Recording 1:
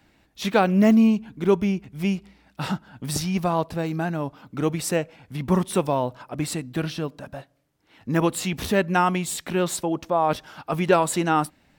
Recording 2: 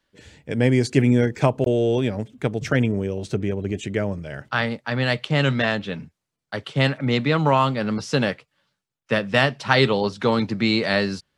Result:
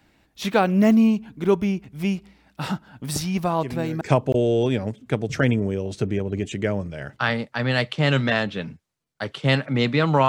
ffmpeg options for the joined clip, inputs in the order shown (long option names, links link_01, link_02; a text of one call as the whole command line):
ffmpeg -i cue0.wav -i cue1.wav -filter_complex "[1:a]asplit=2[link_01][link_02];[0:a]apad=whole_dur=10.28,atrim=end=10.28,atrim=end=4.012[link_03];[link_02]atrim=start=1.328:end=7.6[link_04];[link_01]atrim=start=0.9:end=1.33,asetpts=PTS-STARTPTS,volume=-15.5dB,afade=type=in:duration=0.004:curve=hsin,afade=type=out:start_time=0.426:duration=0.004:curve=hsin,adelay=3580[link_05];[link_03][link_04]acrossfade=duration=0.004:curve1=hsin:curve2=hsin[link_06];[link_06][link_05]amix=inputs=2:normalize=0" out.wav